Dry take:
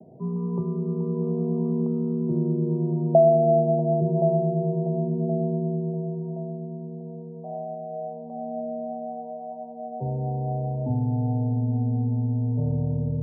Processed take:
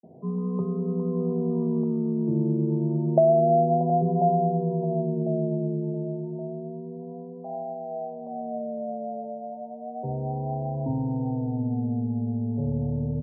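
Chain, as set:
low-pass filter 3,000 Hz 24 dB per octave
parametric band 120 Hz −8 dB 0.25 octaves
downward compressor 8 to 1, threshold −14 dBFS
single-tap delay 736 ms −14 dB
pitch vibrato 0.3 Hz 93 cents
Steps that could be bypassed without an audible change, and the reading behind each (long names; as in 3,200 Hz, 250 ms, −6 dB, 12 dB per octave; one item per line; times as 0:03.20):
low-pass filter 3,000 Hz: nothing at its input above 760 Hz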